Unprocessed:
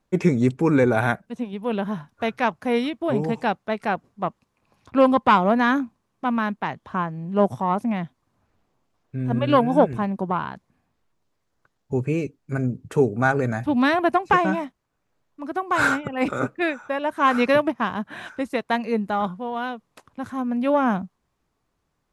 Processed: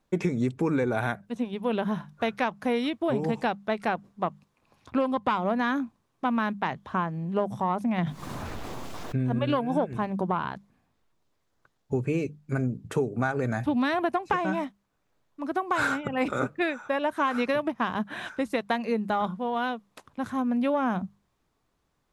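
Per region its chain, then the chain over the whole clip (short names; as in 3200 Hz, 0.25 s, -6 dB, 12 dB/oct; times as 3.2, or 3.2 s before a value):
7.98–9.37 notches 50/100/150/200 Hz + fast leveller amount 70%
whole clip: bell 3600 Hz +2.5 dB 0.34 oct; notches 50/100/150/200 Hz; compressor 10:1, threshold -22 dBFS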